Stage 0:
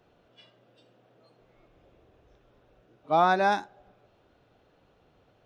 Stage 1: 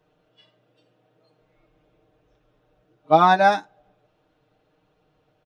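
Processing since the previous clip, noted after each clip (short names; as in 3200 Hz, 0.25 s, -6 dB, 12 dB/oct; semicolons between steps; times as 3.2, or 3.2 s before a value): comb 6.5 ms, depth 72%; upward expander 1.5:1, over -38 dBFS; gain +6.5 dB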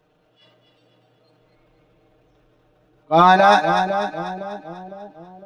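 transient shaper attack -9 dB, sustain +6 dB; split-band echo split 620 Hz, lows 0.507 s, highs 0.246 s, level -6.5 dB; gain +4 dB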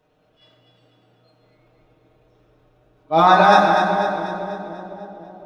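reverb RT60 2.3 s, pre-delay 6 ms, DRR -1 dB; gain -3 dB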